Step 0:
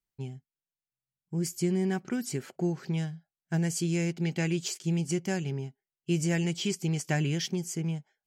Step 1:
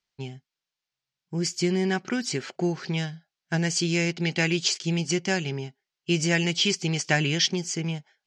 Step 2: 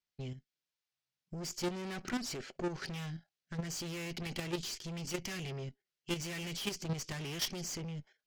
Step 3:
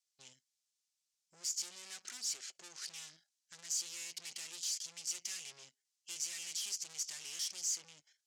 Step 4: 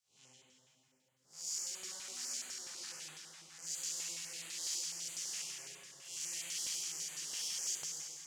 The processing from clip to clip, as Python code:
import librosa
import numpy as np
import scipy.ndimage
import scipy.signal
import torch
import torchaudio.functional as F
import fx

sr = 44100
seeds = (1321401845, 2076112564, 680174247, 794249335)

y1 = scipy.signal.sosfilt(scipy.signal.butter(4, 5500.0, 'lowpass', fs=sr, output='sos'), x)
y1 = fx.tilt_eq(y1, sr, slope=2.5)
y1 = F.gain(torch.from_numpy(y1), 8.0).numpy()
y2 = fx.rotary(y1, sr, hz=0.9)
y2 = fx.tube_stage(y2, sr, drive_db=35.0, bias=0.5)
y2 = fx.level_steps(y2, sr, step_db=9)
y2 = F.gain(torch.from_numpy(y2), 4.5).numpy()
y3 = fx.tube_stage(y2, sr, drive_db=44.0, bias=0.5)
y3 = fx.bandpass_q(y3, sr, hz=7200.0, q=1.9)
y3 = F.gain(torch.from_numpy(y3), 14.0).numpy()
y4 = fx.spec_blur(y3, sr, span_ms=167.0)
y4 = fx.rev_plate(y4, sr, seeds[0], rt60_s=4.6, hf_ratio=0.5, predelay_ms=0, drr_db=-4.5)
y4 = fx.filter_held_notch(y4, sr, hz=12.0, low_hz=340.0, high_hz=5400.0)
y4 = F.gain(torch.from_numpy(y4), 1.0).numpy()